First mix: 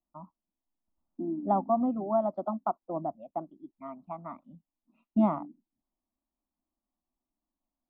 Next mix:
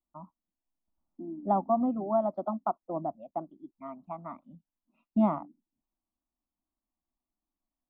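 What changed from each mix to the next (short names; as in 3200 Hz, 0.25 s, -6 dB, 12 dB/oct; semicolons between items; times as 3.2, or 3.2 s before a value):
second voice -6.5 dB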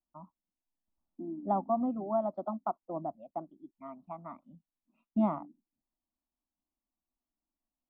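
first voice -3.5 dB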